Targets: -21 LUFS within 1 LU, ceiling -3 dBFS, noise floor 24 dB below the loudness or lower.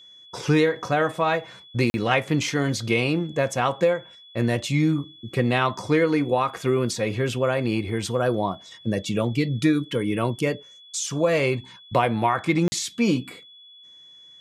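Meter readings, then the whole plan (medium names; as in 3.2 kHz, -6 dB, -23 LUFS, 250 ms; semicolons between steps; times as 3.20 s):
dropouts 2; longest dropout 40 ms; steady tone 3.4 kHz; tone level -46 dBFS; loudness -24.0 LUFS; peak level -4.5 dBFS; loudness target -21.0 LUFS
-> interpolate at 1.90/12.68 s, 40 ms; band-stop 3.4 kHz, Q 30; trim +3 dB; peak limiter -3 dBFS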